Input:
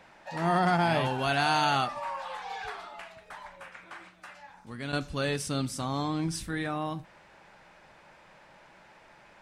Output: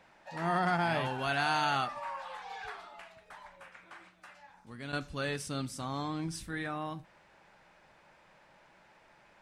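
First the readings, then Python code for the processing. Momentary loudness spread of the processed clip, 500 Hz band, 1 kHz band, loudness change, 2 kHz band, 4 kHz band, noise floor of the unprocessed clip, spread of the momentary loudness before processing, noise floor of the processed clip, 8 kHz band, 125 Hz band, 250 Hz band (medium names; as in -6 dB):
22 LU, -5.5 dB, -4.5 dB, -4.5 dB, -2.5 dB, -5.0 dB, -57 dBFS, 21 LU, -63 dBFS, -6.0 dB, -6.0 dB, -6.0 dB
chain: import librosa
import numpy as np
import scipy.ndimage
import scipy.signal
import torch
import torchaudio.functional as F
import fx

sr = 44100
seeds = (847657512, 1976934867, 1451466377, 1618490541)

y = fx.dynamic_eq(x, sr, hz=1600.0, q=1.1, threshold_db=-40.0, ratio=4.0, max_db=4)
y = y * librosa.db_to_amplitude(-6.0)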